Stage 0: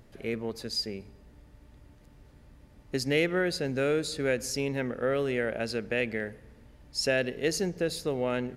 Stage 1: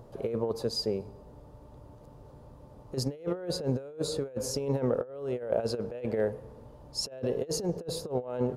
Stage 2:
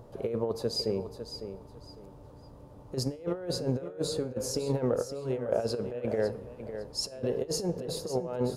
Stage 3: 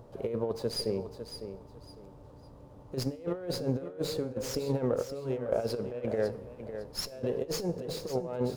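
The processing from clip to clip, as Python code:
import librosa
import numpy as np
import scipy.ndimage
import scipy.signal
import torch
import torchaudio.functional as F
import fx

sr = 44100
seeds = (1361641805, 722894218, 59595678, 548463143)

y1 = fx.graphic_eq_10(x, sr, hz=(125, 500, 1000, 2000), db=(8, 11, 12, -11))
y1 = fx.over_compress(y1, sr, threshold_db=-24.0, ratio=-0.5)
y1 = y1 * librosa.db_to_amplitude(-6.5)
y2 = fx.comb_fb(y1, sr, f0_hz=96.0, decay_s=0.39, harmonics='all', damping=0.0, mix_pct=40)
y2 = fx.echo_feedback(y2, sr, ms=554, feedback_pct=25, wet_db=-10.0)
y2 = y2 * librosa.db_to_amplitude(3.5)
y3 = fx.comb_fb(y2, sr, f0_hz=270.0, decay_s=0.64, harmonics='all', damping=0.0, mix_pct=40)
y3 = fx.running_max(y3, sr, window=3)
y3 = y3 * librosa.db_to_amplitude(3.0)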